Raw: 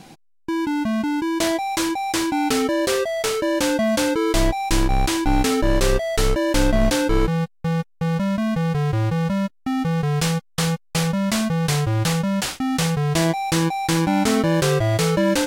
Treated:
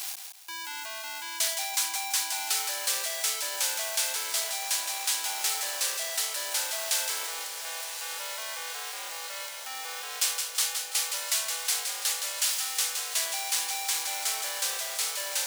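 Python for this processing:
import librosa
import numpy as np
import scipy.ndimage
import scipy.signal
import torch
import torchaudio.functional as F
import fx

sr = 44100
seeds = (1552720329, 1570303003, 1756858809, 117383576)

p1 = x + 0.5 * 10.0 ** (-27.5 / 20.0) * np.sign(x)
p2 = fx.high_shelf(p1, sr, hz=8200.0, db=-4.0)
p3 = p2 + fx.echo_feedback(p2, sr, ms=167, feedback_pct=34, wet_db=-6.5, dry=0)
p4 = fx.rider(p3, sr, range_db=10, speed_s=2.0)
p5 = scipy.signal.sosfilt(scipy.signal.butter(4, 540.0, 'highpass', fs=sr, output='sos'), p4)
p6 = fx.echo_diffused(p5, sr, ms=1056, feedback_pct=71, wet_db=-10.5)
p7 = np.clip(10.0 ** (23.5 / 20.0) * p6, -1.0, 1.0) / 10.0 ** (23.5 / 20.0)
p8 = p6 + (p7 * 10.0 ** (-12.0 / 20.0))
p9 = fx.quant_companded(p8, sr, bits=6)
y = np.diff(p9, prepend=0.0)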